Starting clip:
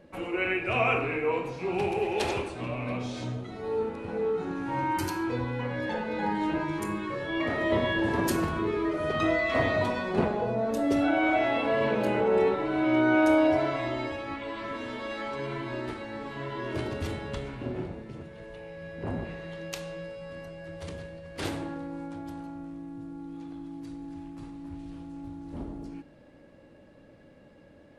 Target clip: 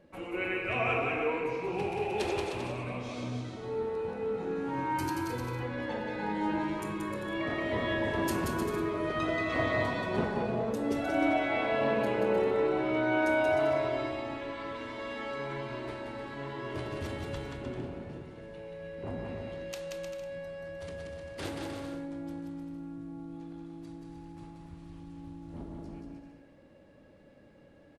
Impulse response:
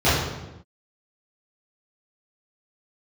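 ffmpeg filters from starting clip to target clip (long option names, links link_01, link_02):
-af "aecho=1:1:180|306|394.2|455.9|499.2:0.631|0.398|0.251|0.158|0.1,volume=-5.5dB"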